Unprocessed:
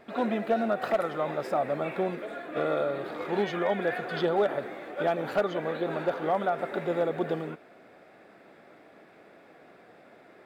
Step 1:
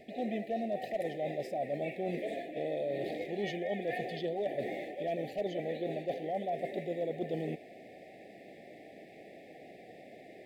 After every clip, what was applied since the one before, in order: Chebyshev band-stop 780–1800 Hz, order 5; reverse; compressor, threshold -36 dBFS, peak gain reduction 14 dB; reverse; gain +3.5 dB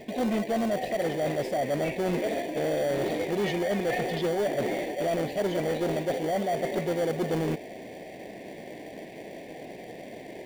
in parallel at -6.5 dB: sample-and-hold 34×; on the sum: soft clip -29.5 dBFS, distortion -14 dB; gain +8.5 dB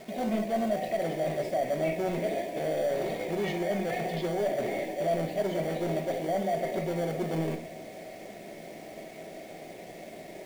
bit-crush 8-bit; small resonant body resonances 660/2200 Hz, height 10 dB, ringing for 55 ms; reverb RT60 0.50 s, pre-delay 5 ms, DRR 6 dB; gain -5.5 dB

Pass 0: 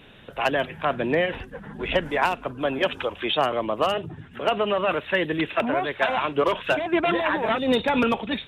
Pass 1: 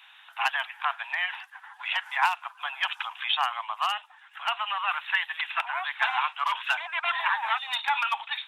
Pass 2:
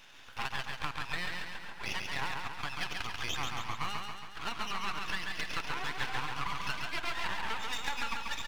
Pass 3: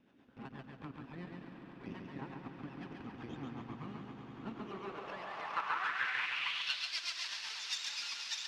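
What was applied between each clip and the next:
steep high-pass 800 Hz 72 dB/oct
half-wave rectifier; compressor, threshold -33 dBFS, peak gain reduction 13 dB; on a send: feedback echo 0.138 s, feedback 57%, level -4 dB; on the sum: gain +1 dB
rotary speaker horn 8 Hz; swelling echo 97 ms, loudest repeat 8, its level -15 dB; band-pass sweep 250 Hz -> 5200 Hz, 4.48–6.99; gain +8.5 dB

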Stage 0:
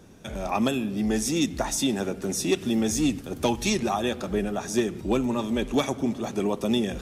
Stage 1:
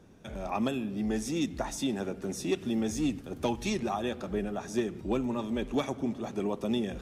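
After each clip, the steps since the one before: high shelf 4000 Hz -7.5 dB; gain -5.5 dB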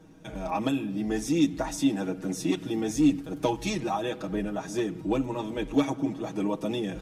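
comb 6.3 ms, depth 91%; small resonant body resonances 280/890 Hz, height 8 dB, ringing for 90 ms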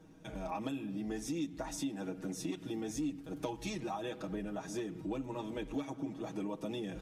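compressor 3:1, threshold -31 dBFS, peak gain reduction 11 dB; gain -5.5 dB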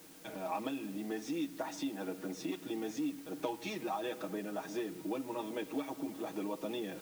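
BPF 270–4400 Hz; requantised 10-bit, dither triangular; gain +2.5 dB

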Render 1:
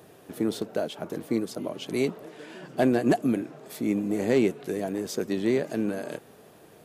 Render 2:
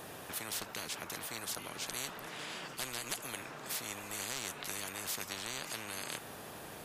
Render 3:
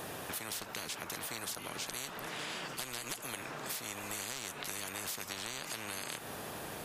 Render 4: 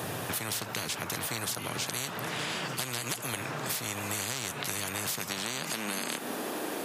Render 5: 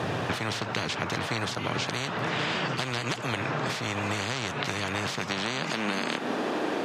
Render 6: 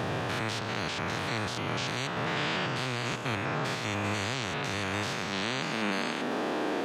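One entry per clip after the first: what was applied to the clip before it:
spectral compressor 10:1; gain -4.5 dB
compressor, threshold -41 dBFS, peak gain reduction 8.5 dB; gain +4.5 dB
high-pass sweep 110 Hz -> 290 Hz, 4.93–6.54; gain +6.5 dB
air absorption 150 m; gain +7 dB
stepped spectrum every 0.1 s; crackle 95/s -49 dBFS

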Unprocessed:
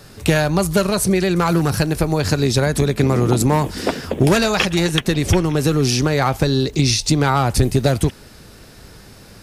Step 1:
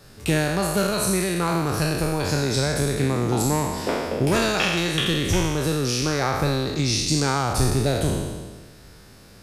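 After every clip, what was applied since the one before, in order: spectral trails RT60 1.44 s; gain -8.5 dB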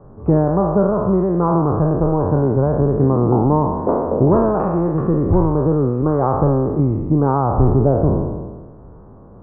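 elliptic low-pass 1100 Hz, stop band 70 dB; gain +8 dB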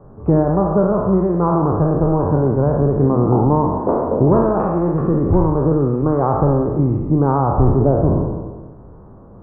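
reverb RT60 0.40 s, pre-delay 56 ms, DRR 8.5 dB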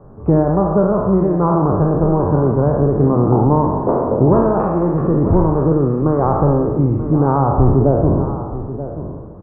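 echo 0.933 s -12.5 dB; gain +1 dB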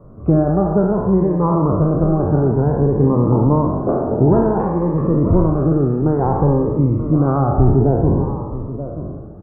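cascading phaser rising 0.57 Hz

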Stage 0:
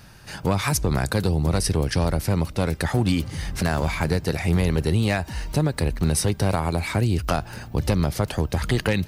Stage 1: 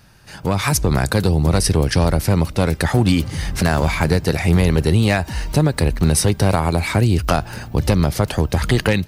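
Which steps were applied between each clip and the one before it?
AGC gain up to 11.5 dB; gain -3 dB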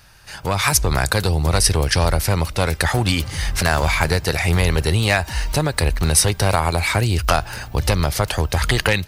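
bell 220 Hz -12 dB 2.3 oct; gain +4 dB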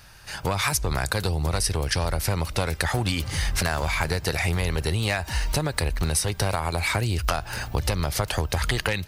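compressor, threshold -21 dBFS, peak gain reduction 11 dB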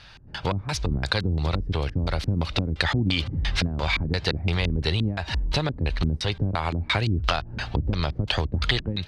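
LFO low-pass square 2.9 Hz 260–3700 Hz

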